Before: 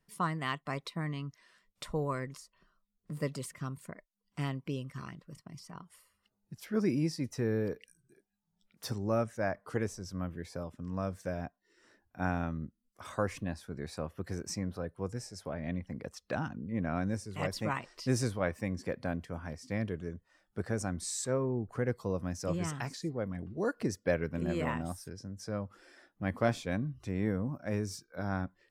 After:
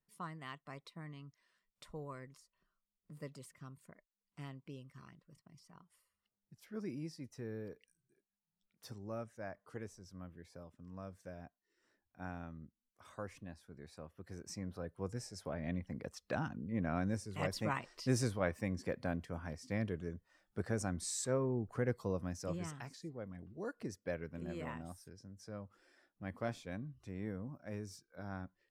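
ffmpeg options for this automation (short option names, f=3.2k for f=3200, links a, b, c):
-af "volume=-3dB,afade=t=in:st=14.21:d=1.05:silence=0.316228,afade=t=out:st=22.02:d=0.8:silence=0.421697"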